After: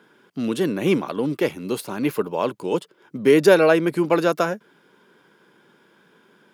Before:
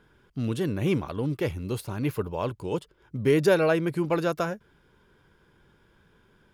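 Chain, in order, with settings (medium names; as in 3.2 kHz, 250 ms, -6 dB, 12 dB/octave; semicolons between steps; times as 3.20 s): high-pass 190 Hz 24 dB/octave; trim +7 dB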